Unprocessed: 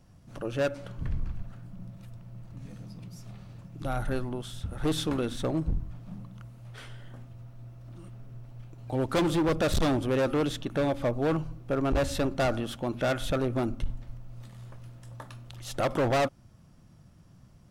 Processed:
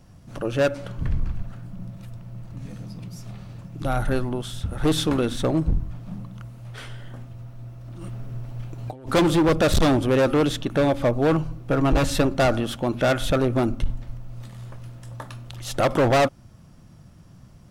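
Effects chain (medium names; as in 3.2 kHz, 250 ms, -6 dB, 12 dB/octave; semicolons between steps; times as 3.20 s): 8.01–9.11 s: compressor with a negative ratio -40 dBFS, ratio -1; 11.69–12.22 s: comb 6.3 ms, depth 53%; trim +7 dB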